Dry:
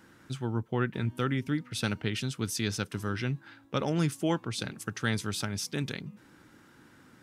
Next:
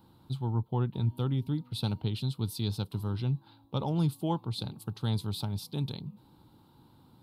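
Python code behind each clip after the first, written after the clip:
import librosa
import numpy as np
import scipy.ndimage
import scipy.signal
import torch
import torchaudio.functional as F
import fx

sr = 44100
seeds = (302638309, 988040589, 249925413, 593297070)

y = fx.curve_eq(x, sr, hz=(130.0, 250.0, 610.0, 900.0, 1800.0, 4100.0, 6000.0, 13000.0), db=(0, -7, -9, 0, -28, -1, -23, -3))
y = y * 10.0 ** (3.5 / 20.0)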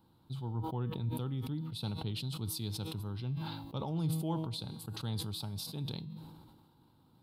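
y = fx.comb_fb(x, sr, f0_hz=160.0, decay_s=0.8, harmonics='all', damping=0.0, mix_pct=60)
y = fx.sustainer(y, sr, db_per_s=37.0)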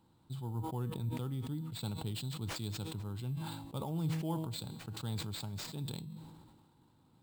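y = fx.sample_hold(x, sr, seeds[0], rate_hz=12000.0, jitter_pct=0)
y = y * 10.0 ** (-1.5 / 20.0)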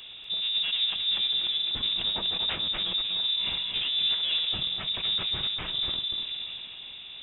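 y = fx.power_curve(x, sr, exponent=0.5)
y = fx.freq_invert(y, sr, carrier_hz=3700)
y = y + 10.0 ** (-6.5 / 20.0) * np.pad(y, (int(243 * sr / 1000.0), 0))[:len(y)]
y = y * 10.0 ** (3.0 / 20.0)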